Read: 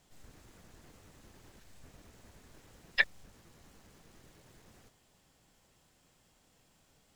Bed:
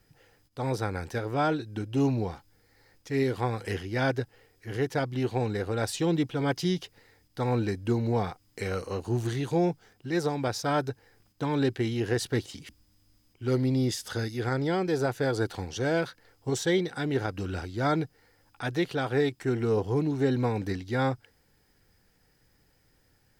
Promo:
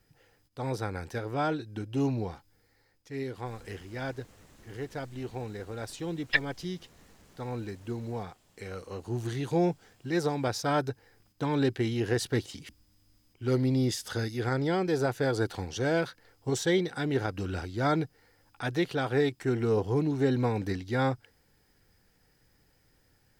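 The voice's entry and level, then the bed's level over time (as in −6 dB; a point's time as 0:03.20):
3.35 s, +1.5 dB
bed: 0:02.65 −3 dB
0:02.95 −9 dB
0:08.67 −9 dB
0:09.61 −0.5 dB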